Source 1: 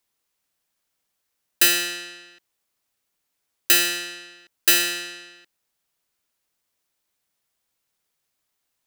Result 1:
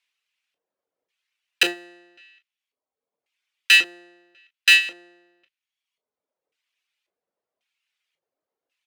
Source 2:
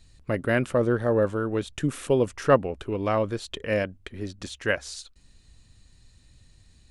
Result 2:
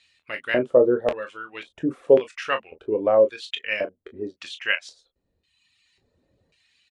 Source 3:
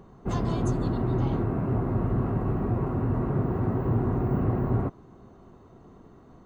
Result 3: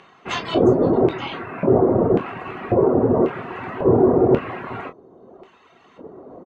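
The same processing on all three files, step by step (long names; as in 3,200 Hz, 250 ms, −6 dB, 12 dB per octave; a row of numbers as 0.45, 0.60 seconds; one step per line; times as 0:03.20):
reverb reduction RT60 1.2 s
auto-filter band-pass square 0.92 Hz 490–2,600 Hz
ambience of single reflections 11 ms −14 dB, 24 ms −9.5 dB, 37 ms −12.5 dB
normalise the peak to −3 dBFS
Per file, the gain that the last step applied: +9.5, +10.0, +23.0 decibels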